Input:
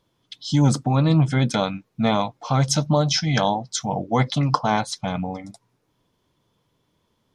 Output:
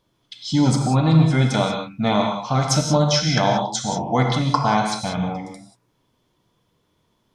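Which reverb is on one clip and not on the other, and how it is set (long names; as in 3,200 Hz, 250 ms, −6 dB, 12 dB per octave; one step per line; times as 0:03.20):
reverb whose tail is shaped and stops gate 210 ms flat, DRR 1.5 dB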